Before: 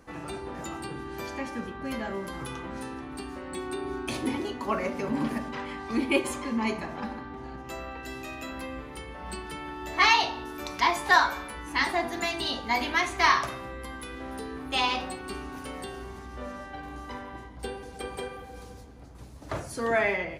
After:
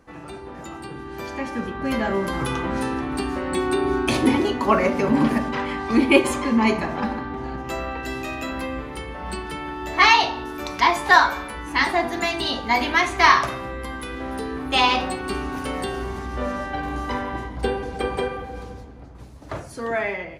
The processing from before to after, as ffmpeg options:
ffmpeg -i in.wav -filter_complex "[0:a]asettb=1/sr,asplit=3[link_01][link_02][link_03];[link_01]atrim=end=17.614[link_04];[link_02]atrim=start=17.61:end=19.2,asetpts=PTS-STARTPTS,afade=type=in:duration=0.004:curve=qsin,afade=type=out:start_time=1.586:duration=0.004:curve=qsin,aemphasis=mode=reproduction:type=cd[link_05];[link_03]atrim=start=19.196[link_06];[link_04][link_05]acrossfade=duration=0.004:curve1=hsin:curve2=qsin[link_07];[link_07][link_06]acrossfade=duration=0.004:curve1=qsin:curve2=hsin,highshelf=frequency=4700:gain=-5,dynaudnorm=framelen=170:gausssize=21:maxgain=13dB" out.wav

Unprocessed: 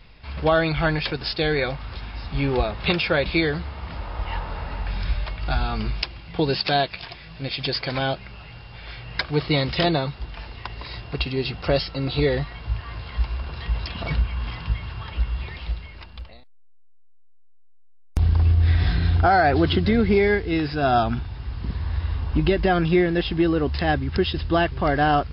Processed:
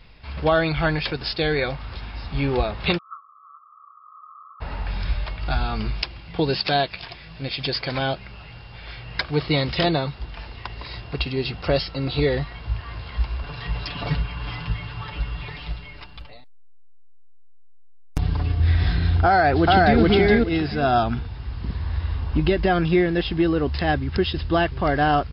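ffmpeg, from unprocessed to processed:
ffmpeg -i in.wav -filter_complex "[0:a]asplit=3[link_01][link_02][link_03];[link_01]afade=type=out:start_time=2.97:duration=0.02[link_04];[link_02]asuperpass=centerf=1200:order=12:qfactor=5,afade=type=in:start_time=2.97:duration=0.02,afade=type=out:start_time=4.6:duration=0.02[link_05];[link_03]afade=type=in:start_time=4.6:duration=0.02[link_06];[link_04][link_05][link_06]amix=inputs=3:normalize=0,asettb=1/sr,asplit=3[link_07][link_08][link_09];[link_07]atrim=end=13.424[link_10];[link_08]atrim=start=13.42:end=18.6,asetpts=PTS-STARTPTS,afade=type=in:duration=0.004:curve=qsin,afade=type=out:start_time=5.176:duration=0.004:curve=qsin,aecho=1:1:6.9:0.77,atrim=end_sample=228438[link_11];[link_09]atrim=start=18.596[link_12];[link_10][link_11]acrossfade=duration=0.004:curve1=hsin:curve2=qsin[link_13];[link_13][link_12]acrossfade=duration=0.004:curve1=qsin:curve2=hsin,asplit=2[link_14][link_15];[link_15]afade=type=in:start_time=19.25:duration=0.01,afade=type=out:start_time=20.01:duration=0.01,aecho=0:1:420|840|1260:1|0.2|0.04[link_16];[link_14][link_16]amix=inputs=2:normalize=0" out.wav

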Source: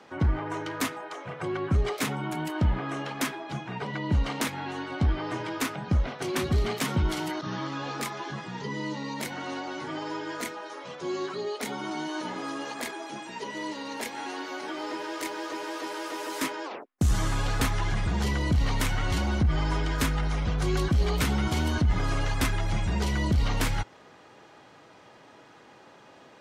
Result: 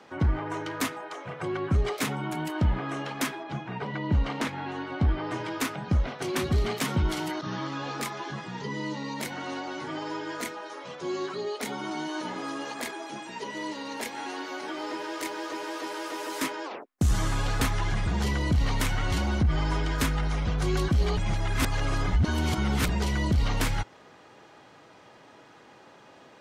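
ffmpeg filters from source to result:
ffmpeg -i in.wav -filter_complex "[0:a]asettb=1/sr,asplit=3[link_01][link_02][link_03];[link_01]atrim=end=3.434[link_04];[link_02]atrim=start=3.43:end=5.31,asetpts=PTS-STARTPTS,afade=type=in:duration=0.004:curve=qsin,afade=type=out:start_time=1.876:duration=0.004:curve=qsin,aemphasis=mode=reproduction:type=50fm[link_05];[link_03]atrim=start=5.306[link_06];[link_04][link_05]acrossfade=duration=0.004:curve1=hsin:curve2=qsin[link_07];[link_07][link_06]acrossfade=duration=0.004:curve1=qsin:curve2=hsin,asplit=3[link_08][link_09][link_10];[link_08]atrim=end=21.172[link_11];[link_09]atrim=start=21.168:end=22.892,asetpts=PTS-STARTPTS,areverse[link_12];[link_10]atrim=start=22.888[link_13];[link_11][link_12]acrossfade=duration=0.004:curve1=hsin:curve2=hsin[link_14];[link_14][link_13]acrossfade=duration=0.004:curve1=hsin:curve2=hsin" out.wav

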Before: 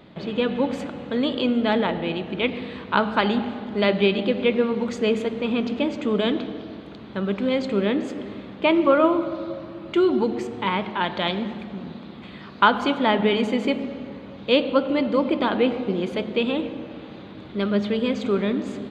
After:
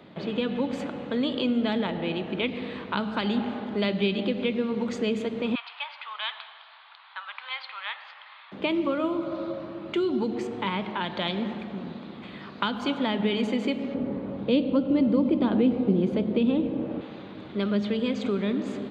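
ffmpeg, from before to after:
ffmpeg -i in.wav -filter_complex "[0:a]asettb=1/sr,asplit=3[link_01][link_02][link_03];[link_01]atrim=end=5.554[link_04];[link_02]atrim=start=5.55:end=8.52,asetpts=PTS-STARTPTS,afade=type=in:duration=0.004:curve=qsin,afade=type=out:start_time=2.966:duration=0.004:curve=qsin,asuperpass=centerf=2000:order=12:qfactor=0.54[link_05];[link_03]atrim=start=8.516[link_06];[link_04][link_05]acrossfade=duration=0.004:curve1=hsin:curve2=qsin[link_07];[link_07][link_06]acrossfade=duration=0.004:curve1=qsin:curve2=hsin,asettb=1/sr,asplit=3[link_08][link_09][link_10];[link_08]atrim=end=13.944[link_11];[link_09]atrim=start=13.94:end=17.01,asetpts=PTS-STARTPTS,afade=type=in:duration=0.004:curve=qsin,afade=type=out:start_time=3.066:duration=0.004:curve=qsin,tiltshelf=frequency=1300:gain=8[link_12];[link_10]atrim=start=17.006[link_13];[link_11][link_12]acrossfade=duration=0.004:curve1=hsin:curve2=qsin[link_14];[link_14][link_13]acrossfade=duration=0.004:curve1=qsin:curve2=hsin,highshelf=frequency=5200:gain=-5.5,acrossover=split=260|3000[link_15][link_16][link_17];[link_16]acompressor=threshold=-28dB:ratio=6[link_18];[link_15][link_18][link_17]amix=inputs=3:normalize=0,highpass=frequency=130:poles=1" out.wav

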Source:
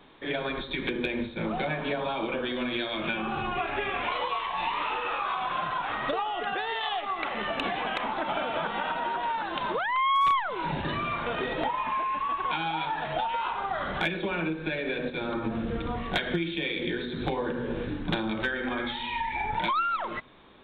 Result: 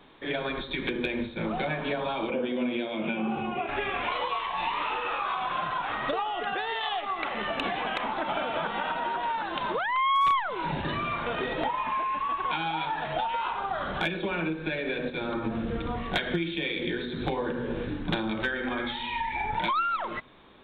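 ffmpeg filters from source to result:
ffmpeg -i in.wav -filter_complex "[0:a]asettb=1/sr,asplit=3[link_01][link_02][link_03];[link_01]atrim=end=2.304[link_04];[link_02]atrim=start=2.3:end=3.69,asetpts=PTS-STARTPTS,afade=type=in:duration=0.004:curve=qsin,afade=type=out:start_time=1.386:duration=0.004:curve=qsin,highpass=100,equalizer=frequency=120:width_type=q:width=4:gain=-5,equalizer=frequency=220:width_type=q:width=4:gain=7,equalizer=frequency=490:width_type=q:width=4:gain=4,equalizer=frequency=1200:width_type=q:width=4:gain=-8,equalizer=frequency=1700:width_type=q:width=4:gain=-10,lowpass=frequency=2900:width=0.5412,lowpass=frequency=2900:width=1.3066[link_05];[link_03]atrim=start=3.686[link_06];[link_04][link_05]acrossfade=duration=0.004:curve1=hsin:curve2=qsin[link_07];[link_07][link_06]acrossfade=duration=0.004:curve1=qsin:curve2=hsin,asettb=1/sr,asplit=3[link_08][link_09][link_10];[link_08]atrim=end=13.594[link_11];[link_09]atrim=start=13.59:end=14.25,asetpts=PTS-STARTPTS,afade=type=in:duration=0.004:curve=qsin,afade=type=out:start_time=0.656:duration=0.004:curve=qsin,equalizer=frequency=2000:width=7.3:gain=-7[link_12];[link_10]atrim=start=14.246[link_13];[link_11][link_12]acrossfade=duration=0.004:curve1=hsin:curve2=qsin[link_14];[link_14][link_13]acrossfade=duration=0.004:curve1=qsin:curve2=hsin" out.wav

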